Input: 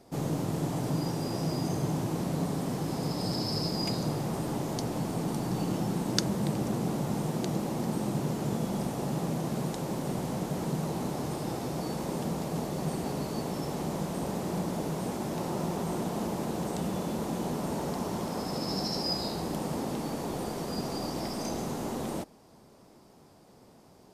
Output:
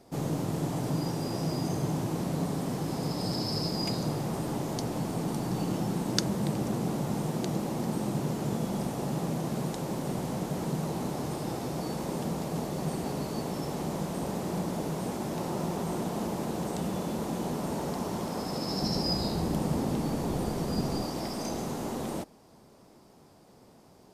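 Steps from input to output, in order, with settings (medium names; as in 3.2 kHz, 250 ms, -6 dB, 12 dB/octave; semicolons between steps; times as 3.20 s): 18.82–21.03 s: bass shelf 190 Hz +10.5 dB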